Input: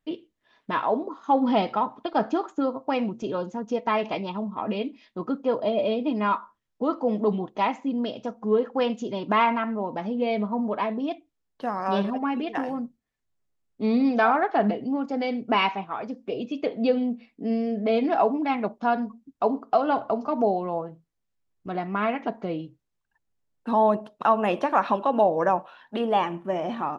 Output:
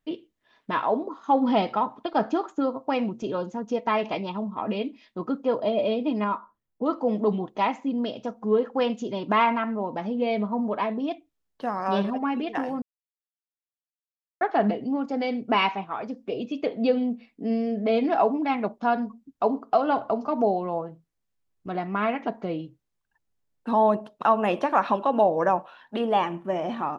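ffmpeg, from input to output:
-filter_complex "[0:a]asettb=1/sr,asplit=3[s0][s1][s2];[s0]atrim=end=6.244[s3];[s1]atrim=start=6.24:end=6.86,asetpts=PTS-STARTPTS,afade=t=in:d=0.004:c=qsin,afade=t=out:st=0.616:d=0.004:c=qsin,equalizer=f=4400:w=0.32:g=-10.5[s4];[s2]atrim=start=6.856[s5];[s3][s4]acrossfade=d=0.004:c1=hsin:c2=qsin[s6];[s6][s5]acrossfade=d=0.004:c1=qsin:c2=hsin,asplit=3[s7][s8][s9];[s7]atrim=end=12.82,asetpts=PTS-STARTPTS,afade=t=out:st=12.816:d=0.004:c=hsin[s10];[s8]atrim=start=12.82:end=14.41,asetpts=PTS-STARTPTS,volume=0[s11];[s9]atrim=start=14.41,asetpts=PTS-STARTPTS,afade=t=in:d=0.004:c=hsin[s12];[s10][s11][s12]concat=n=3:v=0:a=1"

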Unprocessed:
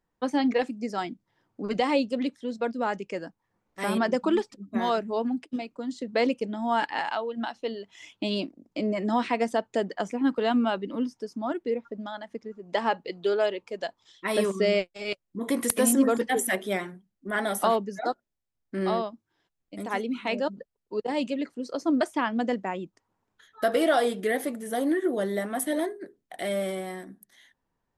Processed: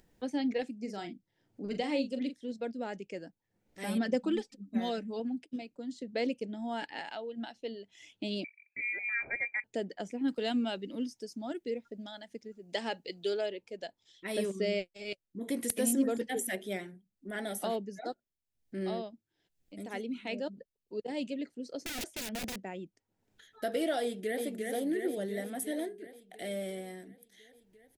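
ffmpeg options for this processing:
-filter_complex "[0:a]asettb=1/sr,asplit=3[s0][s1][s2];[s0]atrim=end=0.804[s3];[s1]atrim=start=0.8:end=2.52,asetpts=PTS-STARTPTS,afade=t=in:d=0.004:c=qsin,afade=t=out:st=1.716:d=0.004:c=qsin,asplit=2[s4][s5];[s5]adelay=40,volume=0.335[s6];[s4][s6]amix=inputs=2:normalize=0,atrim=end_sample=75852[s7];[s2]atrim=start=2.516[s8];[s3][s7]acrossfade=d=0.004:c1=hsin:c2=qsin[s9];[s9][s8]acrossfade=d=0.004:c1=qsin:c2=hsin,asettb=1/sr,asplit=3[s10][s11][s12];[s10]atrim=end=3.844[s13];[s11]atrim=start=3.84:end=5.2,asetpts=PTS-STARTPTS,afade=t=in:d=0.004:c=qsin,afade=t=out:st=1.356:d=0.004:c=qsin,aecho=1:1:3.9:0.65,atrim=end_sample=59976[s14];[s12]atrim=start=5.196[s15];[s13][s14]acrossfade=d=0.004:c1=hsin:c2=qsin[s16];[s16][s15]acrossfade=d=0.004:c1=qsin:c2=hsin,asettb=1/sr,asplit=3[s17][s18][s19];[s17]atrim=end=8.444[s20];[s18]atrim=start=8.44:end=9.64,asetpts=PTS-STARTPTS,afade=t=in:d=0.004:c=qsin,afade=t=out:st=1.196:d=0.004:c=qsin,lowpass=f=2200:t=q:w=0.5098,lowpass=f=2200:t=q:w=0.6013,lowpass=f=2200:t=q:w=0.9,lowpass=f=2200:t=q:w=2.563,afreqshift=-2600[s21];[s19]atrim=start=9.636[s22];[s20][s21]acrossfade=d=0.004:c1=hsin:c2=qsin[s23];[s23][s22]acrossfade=d=0.004:c1=qsin:c2=hsin,asettb=1/sr,asplit=3[s24][s25][s26];[s24]atrim=end=10.284[s27];[s25]atrim=start=10.28:end=13.41,asetpts=PTS-STARTPTS,afade=t=in:d=0.004:c=qsin,afade=t=out:st=3.126:d=0.004:c=qsin,highshelf=f=3200:g=11.5[s28];[s26]atrim=start=13.406[s29];[s27][s28]acrossfade=d=0.004:c1=hsin:c2=qsin[s30];[s30][s29]acrossfade=d=0.004:c1=qsin:c2=hsin,asettb=1/sr,asplit=3[s31][s32][s33];[s31]atrim=end=21.814[s34];[s32]atrim=start=21.81:end=22.62,asetpts=PTS-STARTPTS,afade=t=in:d=0.004:c=qsin,afade=t=out:st=0.806:d=0.004:c=qsin,aeval=exprs='(mod(16.8*val(0)+1,2)-1)/16.8':c=same[s35];[s33]atrim=start=22.616[s36];[s34][s35]acrossfade=d=0.004:c1=hsin:c2=qsin[s37];[s37][s36]acrossfade=d=0.004:c1=qsin:c2=hsin,asplit=2[s38][s39];[s39]afade=t=in:st=24.02:d=0.01,afade=t=out:st=24.45:d=0.01,aecho=0:1:350|700|1050|1400|1750|2100|2450|2800|3150|3500:0.707946|0.460165|0.299107|0.19442|0.126373|0.0821423|0.0533925|0.0347051|0.0225583|0.0146629[s40];[s38][s40]amix=inputs=2:normalize=0,equalizer=f=1100:t=o:w=0.73:g=-15,acompressor=mode=upward:threshold=0.00631:ratio=2.5,volume=0.473"

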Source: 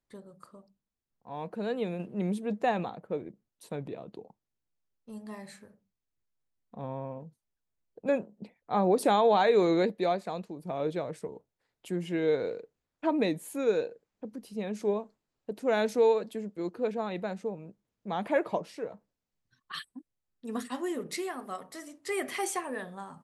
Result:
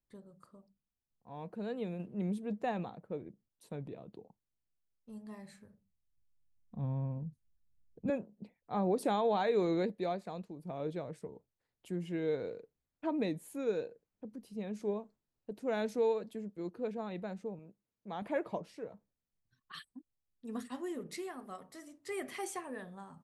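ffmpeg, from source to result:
-filter_complex "[0:a]asettb=1/sr,asplit=3[s0][s1][s2];[s0]atrim=end=5.354[s3];[s1]atrim=start=5.35:end=8.1,asetpts=PTS-STARTPTS,afade=t=in:d=0.004:c=qsin,afade=t=out:st=2.746:d=0.004:c=qsin,asubboost=boost=7.5:cutoff=230[s4];[s2]atrim=start=8.096[s5];[s3][s4]acrossfade=d=0.004:c1=hsin:c2=qsin[s6];[s6][s5]acrossfade=d=0.004:c1=qsin:c2=hsin,asettb=1/sr,asplit=3[s7][s8][s9];[s7]atrim=end=17.594[s10];[s8]atrim=start=17.59:end=18.22,asetpts=PTS-STARTPTS,afade=t=in:d=0.004:c=qsin,afade=t=out:st=0.626:d=0.004:c=qsin,lowshelf=f=150:g=-11.5[s11];[s9]atrim=start=18.216[s12];[s10][s11]acrossfade=d=0.004:c1=hsin:c2=qsin[s13];[s13][s12]acrossfade=d=0.004:c1=qsin:c2=hsin,lowshelf=f=230:g=8.5,volume=0.355"

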